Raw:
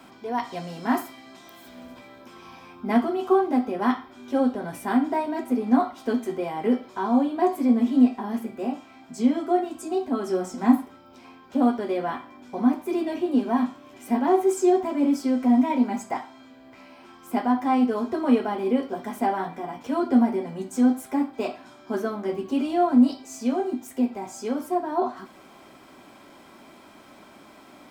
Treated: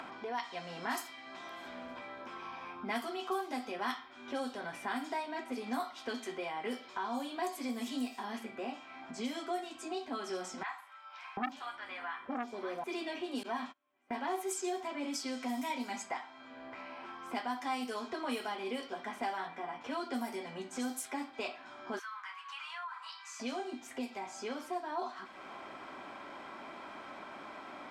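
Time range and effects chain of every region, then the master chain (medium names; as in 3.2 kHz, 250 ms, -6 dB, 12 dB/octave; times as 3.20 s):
10.63–12.84 s: three bands offset in time mids, highs, lows 50/740 ms, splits 980/5800 Hz + transformer saturation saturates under 870 Hz
13.43–15.14 s: gate -37 dBFS, range -31 dB + tone controls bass -4 dB, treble -7 dB
21.99–23.40 s: Chebyshev high-pass 1 kHz, order 5 + compression 3:1, threshold -39 dBFS
whole clip: level-controlled noise filter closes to 1.2 kHz, open at -15 dBFS; pre-emphasis filter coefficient 0.97; upward compressor, threshold -36 dBFS; trim +5 dB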